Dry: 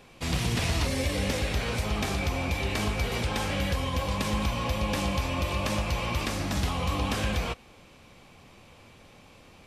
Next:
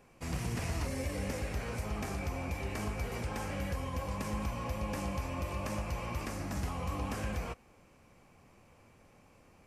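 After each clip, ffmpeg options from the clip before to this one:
-af "equalizer=f=3600:t=o:w=0.72:g=-12.5,volume=0.422"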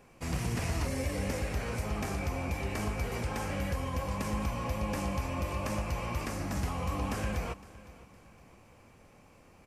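-af "aecho=1:1:511|1022|1533:0.112|0.0426|0.0162,volume=1.41"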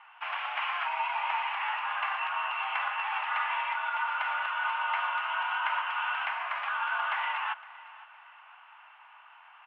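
-af "highpass=f=450:t=q:w=0.5412,highpass=f=450:t=q:w=1.307,lowpass=f=2600:t=q:w=0.5176,lowpass=f=2600:t=q:w=0.7071,lowpass=f=2600:t=q:w=1.932,afreqshift=390,volume=2.66"

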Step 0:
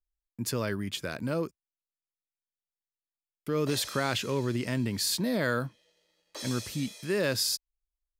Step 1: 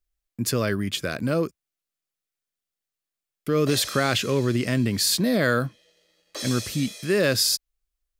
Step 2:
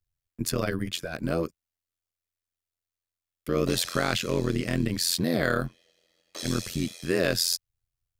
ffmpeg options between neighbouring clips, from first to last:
-af "bandreject=f=920:w=5.3,volume=2.24"
-af "tremolo=f=86:d=0.919"

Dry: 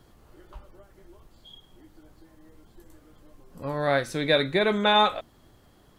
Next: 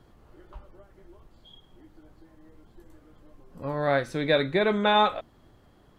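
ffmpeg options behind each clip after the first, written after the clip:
-af "highshelf=f=4100:g=-10"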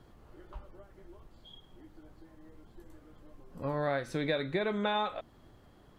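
-af "acompressor=threshold=0.0398:ratio=4,volume=0.891"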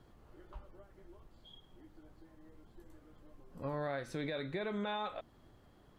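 -af "alimiter=level_in=1.19:limit=0.0631:level=0:latency=1:release=30,volume=0.841,volume=0.631"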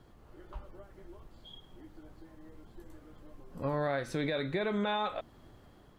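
-af "dynaudnorm=f=170:g=5:m=1.41,volume=1.41"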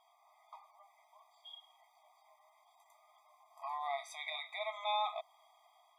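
-af "afftfilt=real='re*eq(mod(floor(b*sr/1024/640),2),1)':imag='im*eq(mod(floor(b*sr/1024/640),2),1)':win_size=1024:overlap=0.75"

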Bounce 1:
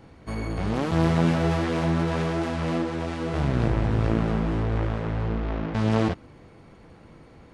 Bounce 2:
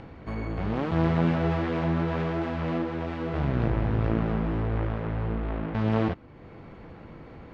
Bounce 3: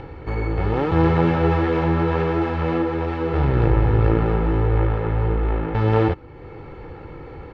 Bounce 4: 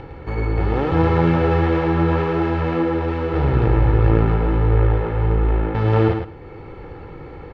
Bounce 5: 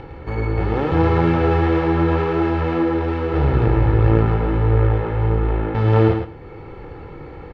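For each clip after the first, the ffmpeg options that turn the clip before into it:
-filter_complex "[0:a]asplit=2[s0][s1];[s1]acompressor=mode=upward:threshold=0.0562:ratio=2.5,volume=0.708[s2];[s0][s2]amix=inputs=2:normalize=0,lowpass=3000,volume=0.447"
-af "highshelf=f=4300:g=-8.5,aecho=1:1:2.3:0.63,volume=2.24"
-af "aecho=1:1:108|216|324:0.501|0.0852|0.0145"
-filter_complex "[0:a]asplit=2[s0][s1];[s1]adelay=27,volume=0.266[s2];[s0][s2]amix=inputs=2:normalize=0"

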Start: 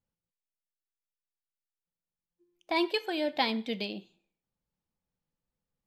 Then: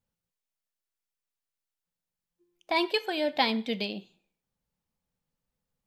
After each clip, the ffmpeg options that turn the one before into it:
-af "equalizer=f=330:w=6.6:g=-5.5,volume=1.41"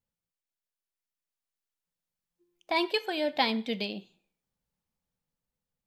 -af "dynaudnorm=f=390:g=7:m=1.58,volume=0.562"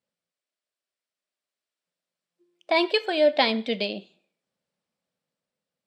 -af "highpass=210,equalizer=f=600:t=q:w=4:g=7,equalizer=f=880:t=q:w=4:g=-5,equalizer=f=6500:t=q:w=4:g=-8,lowpass=f=8500:w=0.5412,lowpass=f=8500:w=1.3066,volume=1.88"

